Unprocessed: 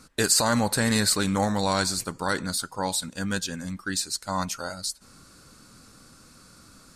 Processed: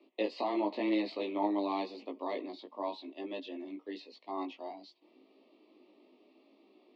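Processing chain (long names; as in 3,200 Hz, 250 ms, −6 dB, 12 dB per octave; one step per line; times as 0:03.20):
chorus effect 0.92 Hz, delay 17.5 ms, depth 2.4 ms
Butterworth band-reject 1,400 Hz, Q 1.1
single-sideband voice off tune +100 Hz 150–3,200 Hz
level −3.5 dB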